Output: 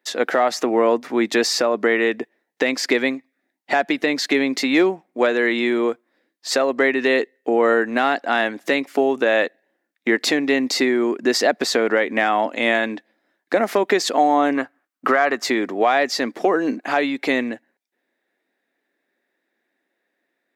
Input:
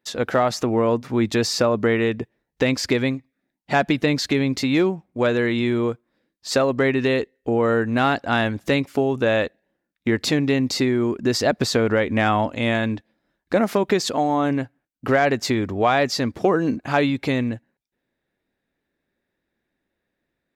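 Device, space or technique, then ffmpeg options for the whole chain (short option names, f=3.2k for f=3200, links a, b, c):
laptop speaker: -filter_complex "[0:a]asettb=1/sr,asplit=3[a][b][c];[a]atrim=end=14.554[d];[b]atrim=start=14.55:end=15.44,asetpts=PTS-STARTPTS,afade=t=in:d=0.004:c=qsin,afade=t=out:st=0.886:d=0.004:c=qsin,equalizer=f=1.2k:t=o:w=0.5:g=11.5[e];[c]atrim=start=15.436[f];[d][e]acrossfade=d=0.004:c1=hsin:c2=qsin[g];[g][f]acrossfade=d=0.004:c1=qsin:c2=hsin,highpass=f=260:w=0.5412,highpass=f=260:w=1.3066,equalizer=f=720:t=o:w=0.27:g=4,equalizer=f=1.9k:t=o:w=0.48:g=5.5,alimiter=limit=-9dB:level=0:latency=1:release=325,volume=3dB"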